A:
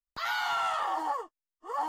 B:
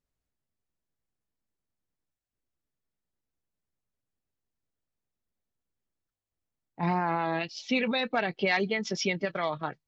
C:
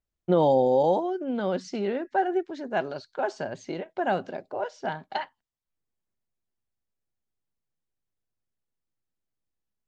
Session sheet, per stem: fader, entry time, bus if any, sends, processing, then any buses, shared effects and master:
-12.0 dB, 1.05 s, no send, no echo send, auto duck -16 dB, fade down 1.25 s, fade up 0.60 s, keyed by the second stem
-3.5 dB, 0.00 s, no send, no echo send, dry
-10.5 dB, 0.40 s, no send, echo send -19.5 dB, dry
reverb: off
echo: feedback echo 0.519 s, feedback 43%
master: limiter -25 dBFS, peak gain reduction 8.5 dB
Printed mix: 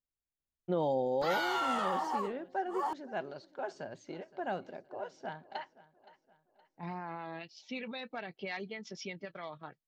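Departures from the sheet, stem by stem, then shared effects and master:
stem A -12.0 dB -> -3.0 dB; stem B -3.5 dB -> -13.5 dB; master: missing limiter -25 dBFS, peak gain reduction 8.5 dB

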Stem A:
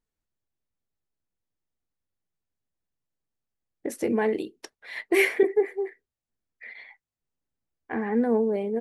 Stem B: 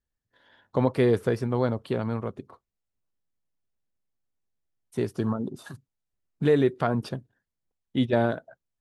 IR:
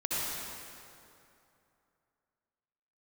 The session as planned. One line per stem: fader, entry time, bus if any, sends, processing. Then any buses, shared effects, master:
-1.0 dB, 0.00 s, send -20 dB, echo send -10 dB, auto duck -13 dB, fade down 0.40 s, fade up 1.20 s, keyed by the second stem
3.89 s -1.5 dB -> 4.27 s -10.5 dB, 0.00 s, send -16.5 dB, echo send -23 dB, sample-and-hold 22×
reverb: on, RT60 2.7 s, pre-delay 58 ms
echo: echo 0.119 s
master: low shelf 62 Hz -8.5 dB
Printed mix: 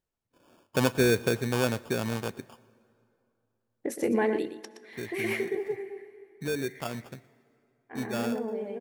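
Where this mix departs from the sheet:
stem B: send -16.5 dB -> -23.5 dB; reverb return -6.5 dB

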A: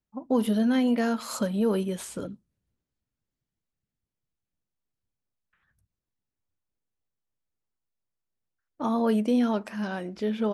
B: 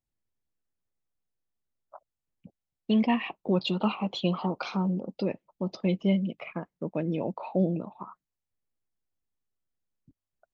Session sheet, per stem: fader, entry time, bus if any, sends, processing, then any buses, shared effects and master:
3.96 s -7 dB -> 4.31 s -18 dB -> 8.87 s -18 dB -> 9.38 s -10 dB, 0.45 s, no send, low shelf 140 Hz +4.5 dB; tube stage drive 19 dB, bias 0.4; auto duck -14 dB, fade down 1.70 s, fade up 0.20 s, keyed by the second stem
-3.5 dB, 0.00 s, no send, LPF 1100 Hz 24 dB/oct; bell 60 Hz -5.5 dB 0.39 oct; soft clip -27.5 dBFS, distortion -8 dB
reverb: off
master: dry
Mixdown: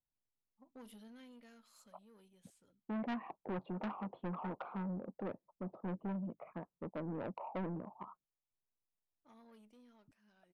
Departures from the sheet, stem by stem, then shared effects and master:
stem A -7.0 dB -> -19.0 dB; master: extra tilt shelf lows -5.5 dB, about 1300 Hz

